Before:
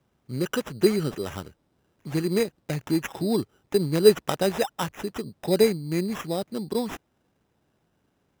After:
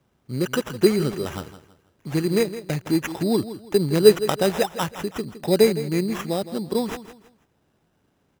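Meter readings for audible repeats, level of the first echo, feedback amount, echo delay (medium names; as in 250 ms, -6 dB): 3, -13.5 dB, 31%, 163 ms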